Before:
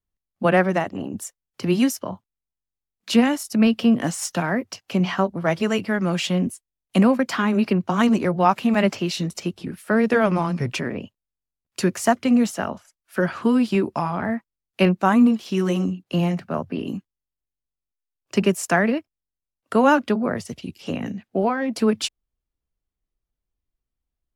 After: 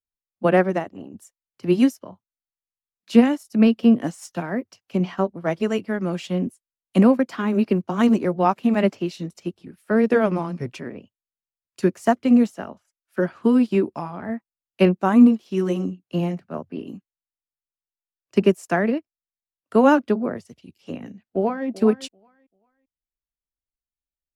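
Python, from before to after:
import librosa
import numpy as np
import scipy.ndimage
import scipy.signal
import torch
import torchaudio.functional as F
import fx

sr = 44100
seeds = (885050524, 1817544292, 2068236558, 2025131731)

y = fx.quant_float(x, sr, bits=6, at=(7.4, 8.33))
y = fx.echo_throw(y, sr, start_s=21.07, length_s=0.61, ms=390, feedback_pct=30, wet_db=-11.0)
y = fx.dynamic_eq(y, sr, hz=350.0, q=0.71, threshold_db=-31.0, ratio=4.0, max_db=7)
y = fx.upward_expand(y, sr, threshold_db=-34.0, expansion=1.5)
y = y * 10.0 ** (-1.5 / 20.0)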